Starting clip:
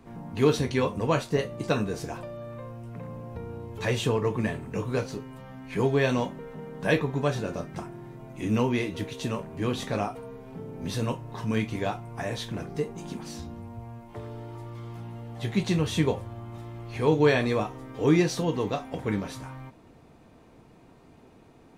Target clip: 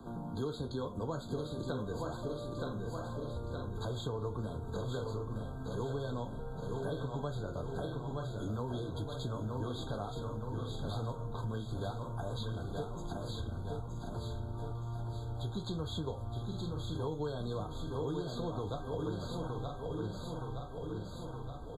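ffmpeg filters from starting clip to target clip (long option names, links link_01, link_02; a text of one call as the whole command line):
ffmpeg -i in.wav -filter_complex "[0:a]asubboost=boost=7:cutoff=72,asplit=2[link_01][link_02];[link_02]aecho=0:1:919|1838|2757|3676|4595:0.447|0.205|0.0945|0.0435|0.02[link_03];[link_01][link_03]amix=inputs=2:normalize=0,acrossover=split=110|410|5200[link_04][link_05][link_06][link_07];[link_04]acompressor=threshold=-35dB:ratio=4[link_08];[link_05]acompressor=threshold=-29dB:ratio=4[link_09];[link_06]acompressor=threshold=-30dB:ratio=4[link_10];[link_07]acompressor=threshold=-49dB:ratio=4[link_11];[link_08][link_09][link_10][link_11]amix=inputs=4:normalize=0,asplit=2[link_12][link_13];[link_13]aecho=0:1:966:0.376[link_14];[link_12][link_14]amix=inputs=2:normalize=0,acompressor=threshold=-43dB:ratio=2.5,afftfilt=real='re*eq(mod(floor(b*sr/1024/1600),2),0)':imag='im*eq(mod(floor(b*sr/1024/1600),2),0)':win_size=1024:overlap=0.75,volume=3dB" out.wav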